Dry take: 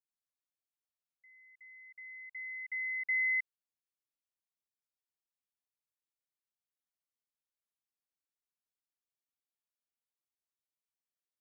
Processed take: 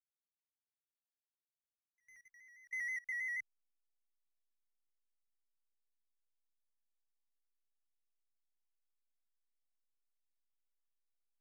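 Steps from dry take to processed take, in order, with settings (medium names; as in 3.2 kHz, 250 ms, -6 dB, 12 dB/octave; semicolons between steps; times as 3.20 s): pitch shift switched off and on -1 st, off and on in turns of 80 ms; tilt EQ -5 dB/octave; hysteresis with a dead band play -46.5 dBFS; level held to a coarse grid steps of 22 dB; trim +4.5 dB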